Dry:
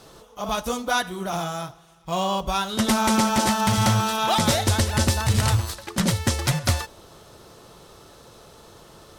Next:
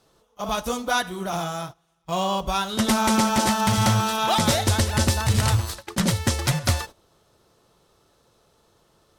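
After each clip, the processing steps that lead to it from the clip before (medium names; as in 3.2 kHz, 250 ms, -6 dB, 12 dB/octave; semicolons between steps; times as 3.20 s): gate -36 dBFS, range -14 dB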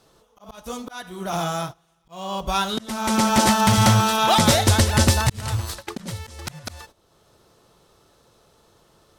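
slow attack 606 ms; trim +4 dB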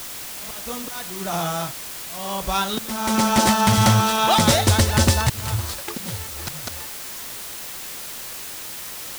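added noise white -34 dBFS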